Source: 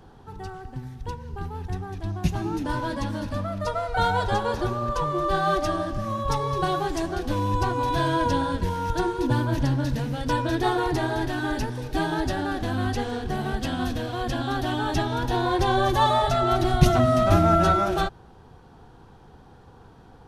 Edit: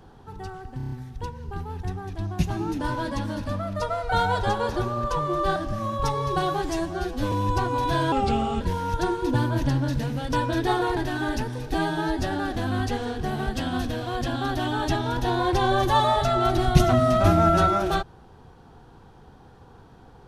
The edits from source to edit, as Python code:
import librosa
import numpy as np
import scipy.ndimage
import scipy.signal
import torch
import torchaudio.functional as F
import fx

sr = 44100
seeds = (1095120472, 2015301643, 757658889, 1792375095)

y = fx.edit(x, sr, fx.stutter(start_s=0.77, slice_s=0.03, count=6),
    fx.cut(start_s=5.41, length_s=0.41),
    fx.stretch_span(start_s=6.95, length_s=0.42, factor=1.5),
    fx.speed_span(start_s=8.17, length_s=0.4, speed=0.82),
    fx.cut(start_s=10.93, length_s=0.26),
    fx.stretch_span(start_s=11.96, length_s=0.32, factor=1.5), tone=tone)